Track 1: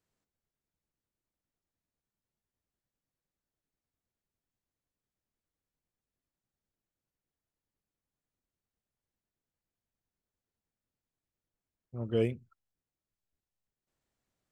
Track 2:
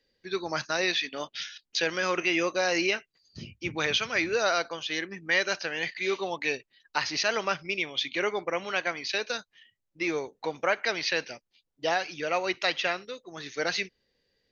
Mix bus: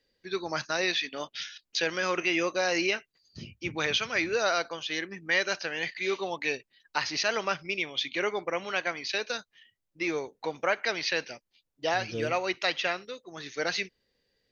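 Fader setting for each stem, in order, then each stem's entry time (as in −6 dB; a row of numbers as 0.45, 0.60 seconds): −6.0, −1.0 decibels; 0.00, 0.00 seconds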